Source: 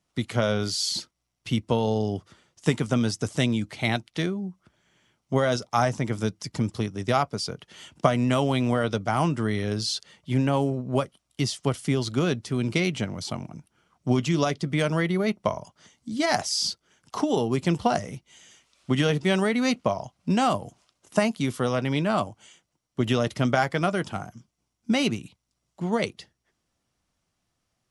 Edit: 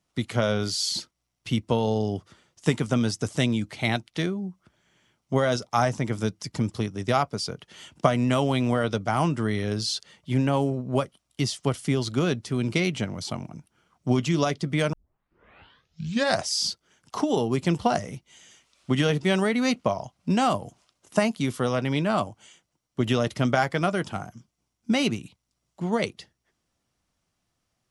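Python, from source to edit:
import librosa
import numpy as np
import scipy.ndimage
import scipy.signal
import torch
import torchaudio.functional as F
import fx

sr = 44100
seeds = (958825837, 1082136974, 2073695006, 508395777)

y = fx.edit(x, sr, fx.tape_start(start_s=14.93, length_s=1.56), tone=tone)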